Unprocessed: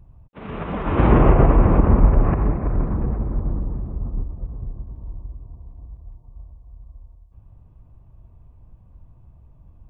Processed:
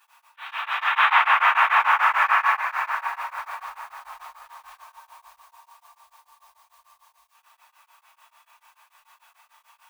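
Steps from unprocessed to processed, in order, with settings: formants flattened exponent 0.6; elliptic high-pass 910 Hz, stop band 60 dB; dynamic bell 1.6 kHz, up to +5 dB, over -34 dBFS, Q 0.89; peak limiter -13.5 dBFS, peak gain reduction 9 dB; simulated room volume 150 m³, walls mixed, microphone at 4.4 m; tremolo of two beating tones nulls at 6.8 Hz; trim -6 dB

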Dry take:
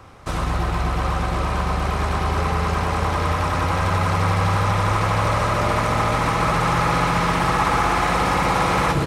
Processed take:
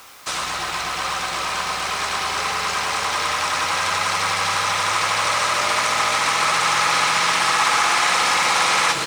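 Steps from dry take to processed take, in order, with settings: frequency weighting ITU-R 468; word length cut 8-bit, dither triangular

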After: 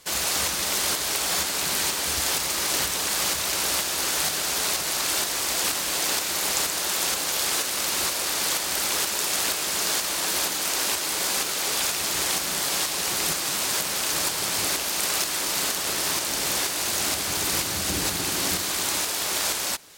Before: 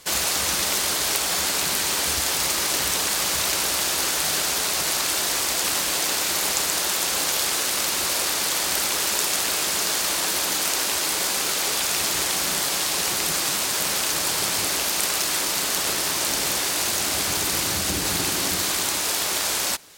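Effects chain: tremolo saw up 2.1 Hz, depth 40%; saturation -9.5 dBFS, distortion -30 dB

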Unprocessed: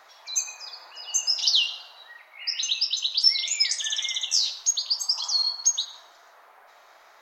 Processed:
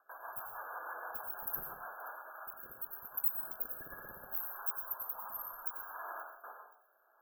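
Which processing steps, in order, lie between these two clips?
gate with hold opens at -42 dBFS; tilt shelf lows -6 dB, about 1.2 kHz; in parallel at +3 dB: compression, threshold -27 dBFS, peak gain reduction 18 dB; on the sum: saturation -11 dBFS, distortion -13 dB; rotary cabinet horn 6.3 Hz, later 0.7 Hz, at 1.73 s; brick-wall FIR band-stop 1.7–12 kHz; feedback echo behind a high-pass 526 ms, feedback 33%, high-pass 4 kHz, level -21 dB; plate-style reverb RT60 0.59 s, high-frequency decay 0.65×, pre-delay 80 ms, DRR 4 dB; trim +2.5 dB

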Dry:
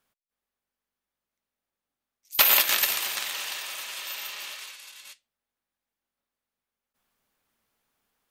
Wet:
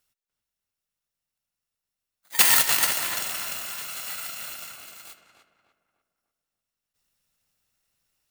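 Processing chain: bit-reversed sample order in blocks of 128 samples; on a send: filtered feedback delay 296 ms, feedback 43%, low-pass 2.1 kHz, level -6 dB; on the sum: trim +1.5 dB

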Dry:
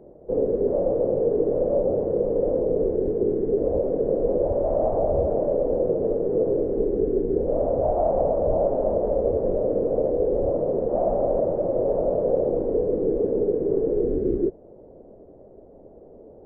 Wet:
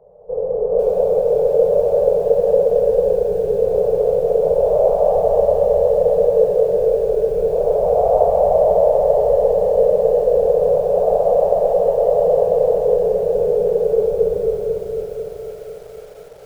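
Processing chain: elliptic band-stop 190–430 Hz, stop band 40 dB; high-order bell 720 Hz +9 dB; on a send: bucket-brigade echo 226 ms, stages 1024, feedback 55%, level -6 dB; on the sum: plate-style reverb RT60 2.5 s, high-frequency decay 0.65×, pre-delay 90 ms, DRR -3 dB; bit-crushed delay 500 ms, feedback 55%, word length 6-bit, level -9.5 dB; trim -6 dB

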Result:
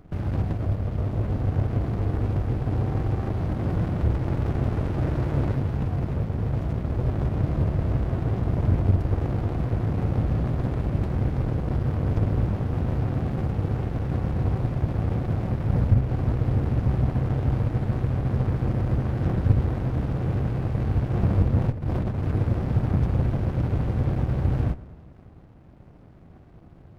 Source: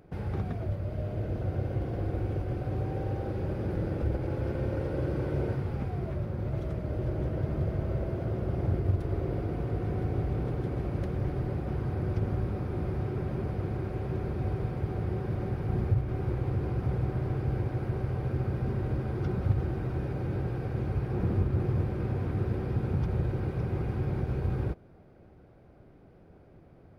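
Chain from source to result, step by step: 21.70–22.24 s: compressor with a negative ratio -32 dBFS, ratio -0.5; bucket-brigade echo 118 ms, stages 2048, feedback 65%, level -19.5 dB; sliding maximum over 65 samples; trim +7.5 dB

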